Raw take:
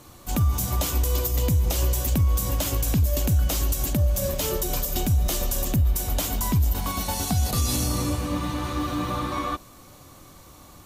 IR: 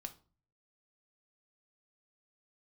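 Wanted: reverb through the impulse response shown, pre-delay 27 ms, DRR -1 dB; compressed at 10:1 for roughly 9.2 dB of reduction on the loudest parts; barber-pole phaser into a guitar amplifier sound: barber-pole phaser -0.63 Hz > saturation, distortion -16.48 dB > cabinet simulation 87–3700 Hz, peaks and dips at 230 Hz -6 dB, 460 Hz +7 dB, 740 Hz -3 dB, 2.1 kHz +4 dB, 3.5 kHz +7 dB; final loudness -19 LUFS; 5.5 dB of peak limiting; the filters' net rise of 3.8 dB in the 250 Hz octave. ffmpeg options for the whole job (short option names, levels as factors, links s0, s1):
-filter_complex "[0:a]equalizer=f=250:t=o:g=7.5,acompressor=threshold=0.0562:ratio=10,alimiter=limit=0.0794:level=0:latency=1,asplit=2[s0][s1];[1:a]atrim=start_sample=2205,adelay=27[s2];[s1][s2]afir=irnorm=-1:irlink=0,volume=1.78[s3];[s0][s3]amix=inputs=2:normalize=0,asplit=2[s4][s5];[s5]afreqshift=-0.63[s6];[s4][s6]amix=inputs=2:normalize=1,asoftclip=threshold=0.0668,highpass=87,equalizer=f=230:t=q:w=4:g=-6,equalizer=f=460:t=q:w=4:g=7,equalizer=f=740:t=q:w=4:g=-3,equalizer=f=2100:t=q:w=4:g=4,equalizer=f=3500:t=q:w=4:g=7,lowpass=f=3700:w=0.5412,lowpass=f=3700:w=1.3066,volume=5.96"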